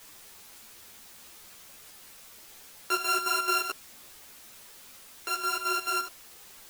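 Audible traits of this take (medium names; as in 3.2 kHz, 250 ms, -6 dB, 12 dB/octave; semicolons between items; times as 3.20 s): a buzz of ramps at a fixed pitch in blocks of 32 samples; chopped level 4.6 Hz, depth 65%, duty 60%; a quantiser's noise floor 8-bit, dither triangular; a shimmering, thickened sound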